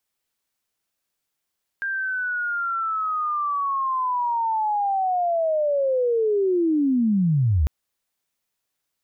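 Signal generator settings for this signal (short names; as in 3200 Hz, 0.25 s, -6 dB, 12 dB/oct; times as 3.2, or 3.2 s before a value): chirp linear 1600 Hz -> 64 Hz -23.5 dBFS -> -16 dBFS 5.85 s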